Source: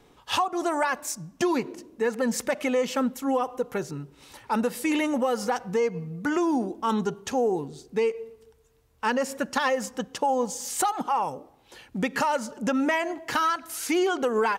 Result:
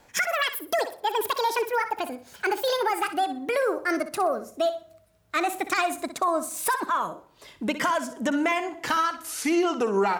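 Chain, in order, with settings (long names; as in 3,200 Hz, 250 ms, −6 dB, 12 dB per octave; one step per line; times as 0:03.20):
gliding playback speed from 198% → 88%
flutter between parallel walls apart 10.5 metres, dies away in 0.31 s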